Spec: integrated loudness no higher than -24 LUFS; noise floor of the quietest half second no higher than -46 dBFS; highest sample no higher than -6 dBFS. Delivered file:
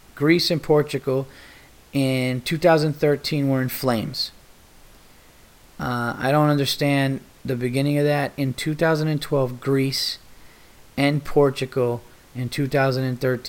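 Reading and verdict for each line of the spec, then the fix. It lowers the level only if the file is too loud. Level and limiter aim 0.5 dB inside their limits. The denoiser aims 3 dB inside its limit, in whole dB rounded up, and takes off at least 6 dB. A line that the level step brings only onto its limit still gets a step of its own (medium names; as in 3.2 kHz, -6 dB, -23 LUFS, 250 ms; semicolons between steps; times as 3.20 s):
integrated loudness -22.0 LUFS: fail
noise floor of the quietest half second -50 dBFS: pass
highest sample -4.0 dBFS: fail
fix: trim -2.5 dB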